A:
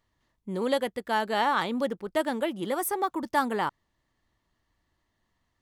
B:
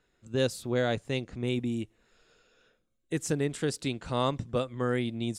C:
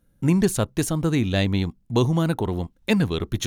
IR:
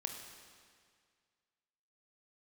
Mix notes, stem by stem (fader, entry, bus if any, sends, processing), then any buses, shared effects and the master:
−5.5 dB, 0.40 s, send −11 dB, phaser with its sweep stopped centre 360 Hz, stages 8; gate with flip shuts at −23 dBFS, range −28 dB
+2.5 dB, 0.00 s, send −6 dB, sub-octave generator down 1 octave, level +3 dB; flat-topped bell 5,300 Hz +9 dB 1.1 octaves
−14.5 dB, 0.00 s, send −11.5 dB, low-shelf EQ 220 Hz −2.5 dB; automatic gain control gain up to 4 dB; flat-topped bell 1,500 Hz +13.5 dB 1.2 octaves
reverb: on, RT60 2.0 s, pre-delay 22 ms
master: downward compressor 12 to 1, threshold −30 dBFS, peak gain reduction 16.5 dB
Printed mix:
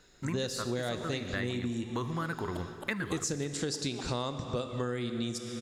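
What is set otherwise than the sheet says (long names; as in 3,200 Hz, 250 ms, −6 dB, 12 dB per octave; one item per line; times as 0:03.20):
stem B: missing sub-octave generator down 1 octave, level +3 dB
reverb return +8.5 dB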